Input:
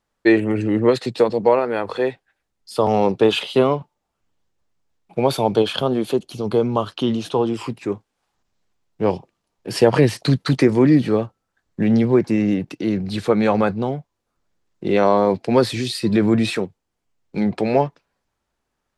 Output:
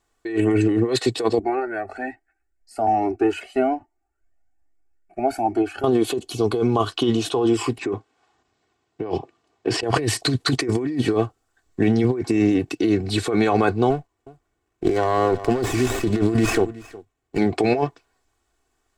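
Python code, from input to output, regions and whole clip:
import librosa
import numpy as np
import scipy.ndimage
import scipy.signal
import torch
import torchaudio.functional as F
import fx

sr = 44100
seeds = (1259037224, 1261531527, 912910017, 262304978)

y = fx.chain(x, sr, fx.high_shelf(hz=3900.0, db=-11.5),
    fx.fixed_phaser(hz=710.0, stages=8),
    fx.comb_cascade(direction='rising', hz=1.2), at=(1.39, 5.84))
y = fx.chain(y, sr, fx.over_compress(threshold_db=-28.0, ratio=-1.0),
    fx.bandpass_edges(low_hz=110.0, high_hz=6800.0),
    fx.high_shelf(hz=5000.0, db=-11.0), at=(7.78, 9.83))
y = fx.chain(y, sr, fx.echo_single(ms=364, db=-21.5),
    fx.running_max(window=9), at=(13.9, 17.38))
y = fx.peak_eq(y, sr, hz=7700.0, db=8.0, octaves=0.35)
y = y + 0.69 * np.pad(y, (int(2.7 * sr / 1000.0), 0))[:len(y)]
y = fx.over_compress(y, sr, threshold_db=-19.0, ratio=-1.0)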